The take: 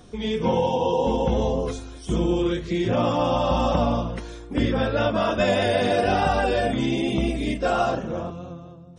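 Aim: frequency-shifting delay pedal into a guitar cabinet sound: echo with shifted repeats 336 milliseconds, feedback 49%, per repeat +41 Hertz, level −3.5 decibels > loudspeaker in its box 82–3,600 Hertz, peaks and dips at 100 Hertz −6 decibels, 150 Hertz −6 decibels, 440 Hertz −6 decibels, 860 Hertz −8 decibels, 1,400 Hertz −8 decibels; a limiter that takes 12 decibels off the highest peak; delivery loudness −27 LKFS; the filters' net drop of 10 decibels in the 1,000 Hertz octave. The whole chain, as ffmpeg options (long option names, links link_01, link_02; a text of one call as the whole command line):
ffmpeg -i in.wav -filter_complex "[0:a]equalizer=frequency=1000:width_type=o:gain=-8.5,alimiter=limit=-21dB:level=0:latency=1,asplit=7[link_01][link_02][link_03][link_04][link_05][link_06][link_07];[link_02]adelay=336,afreqshift=41,volume=-3.5dB[link_08];[link_03]adelay=672,afreqshift=82,volume=-9.7dB[link_09];[link_04]adelay=1008,afreqshift=123,volume=-15.9dB[link_10];[link_05]adelay=1344,afreqshift=164,volume=-22.1dB[link_11];[link_06]adelay=1680,afreqshift=205,volume=-28.3dB[link_12];[link_07]adelay=2016,afreqshift=246,volume=-34.5dB[link_13];[link_01][link_08][link_09][link_10][link_11][link_12][link_13]amix=inputs=7:normalize=0,highpass=82,equalizer=frequency=100:width_type=q:width=4:gain=-6,equalizer=frequency=150:width_type=q:width=4:gain=-6,equalizer=frequency=440:width_type=q:width=4:gain=-6,equalizer=frequency=860:width_type=q:width=4:gain=-8,equalizer=frequency=1400:width_type=q:width=4:gain=-8,lowpass=frequency=3600:width=0.5412,lowpass=frequency=3600:width=1.3066,volume=3.5dB" out.wav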